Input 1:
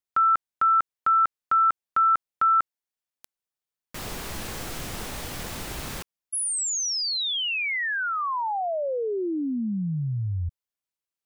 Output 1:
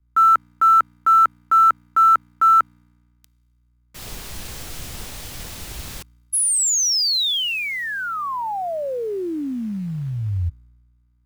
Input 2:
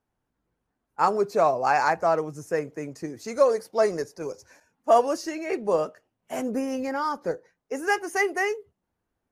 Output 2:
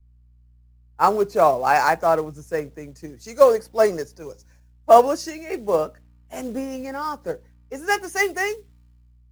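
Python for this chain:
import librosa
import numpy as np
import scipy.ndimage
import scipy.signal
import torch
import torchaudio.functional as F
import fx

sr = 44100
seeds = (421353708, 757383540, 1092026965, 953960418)

y = fx.add_hum(x, sr, base_hz=60, snr_db=25)
y = fx.quant_companded(y, sr, bits=6)
y = fx.band_widen(y, sr, depth_pct=70)
y = y * 10.0 ** (2.0 / 20.0)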